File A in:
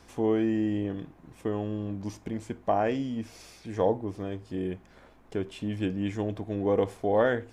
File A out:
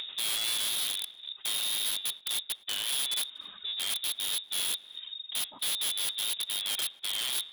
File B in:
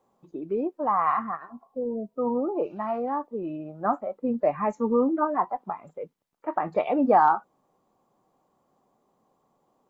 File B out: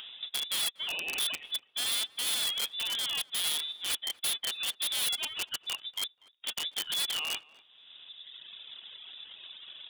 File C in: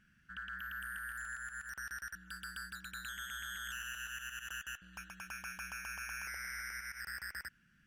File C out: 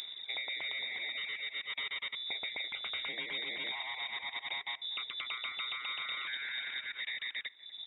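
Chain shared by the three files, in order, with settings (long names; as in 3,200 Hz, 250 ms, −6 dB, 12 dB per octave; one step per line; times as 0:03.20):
each half-wave held at its own peak
reverb reduction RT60 1.2 s
reversed playback
downward compressor 10 to 1, threshold −35 dBFS
reversed playback
low-shelf EQ 360 Hz +11.5 dB
voice inversion scrambler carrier 3,700 Hz
upward compression, threshold −33 dBFS
wrap-around overflow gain 25.5 dB
low-shelf EQ 170 Hz −9 dB
on a send: tape delay 242 ms, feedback 22%, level −18 dB, low-pass 1,600 Hz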